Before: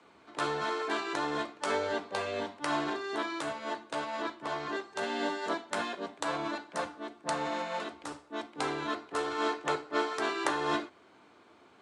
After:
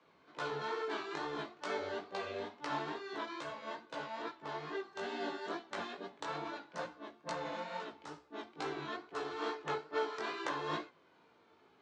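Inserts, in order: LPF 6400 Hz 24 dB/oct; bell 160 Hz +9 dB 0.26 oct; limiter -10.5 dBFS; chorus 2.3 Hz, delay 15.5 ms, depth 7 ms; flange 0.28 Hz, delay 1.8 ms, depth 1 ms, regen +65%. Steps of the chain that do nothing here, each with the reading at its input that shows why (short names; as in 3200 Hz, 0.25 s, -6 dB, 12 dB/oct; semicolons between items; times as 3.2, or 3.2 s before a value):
limiter -10.5 dBFS: input peak -13.5 dBFS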